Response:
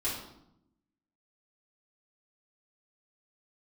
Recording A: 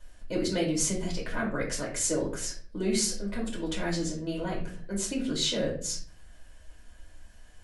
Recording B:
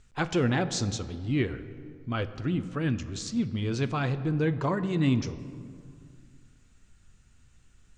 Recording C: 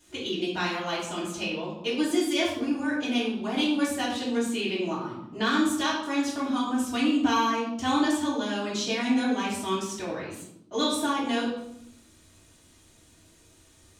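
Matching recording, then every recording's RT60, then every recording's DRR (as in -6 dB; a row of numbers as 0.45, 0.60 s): C; 0.45, 2.3, 0.80 s; -5.0, 11.0, -9.5 dB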